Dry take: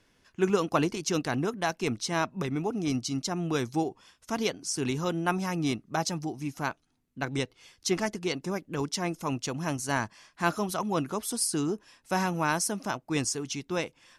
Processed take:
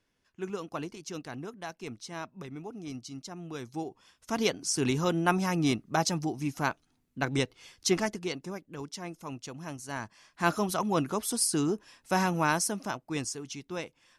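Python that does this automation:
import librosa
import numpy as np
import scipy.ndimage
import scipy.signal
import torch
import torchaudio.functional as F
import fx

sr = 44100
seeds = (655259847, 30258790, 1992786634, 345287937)

y = fx.gain(x, sr, db=fx.line((3.56, -11.0), (4.49, 2.0), (7.87, 2.0), (8.7, -9.0), (9.91, -9.0), (10.51, 1.0), (12.45, 1.0), (13.36, -6.0)))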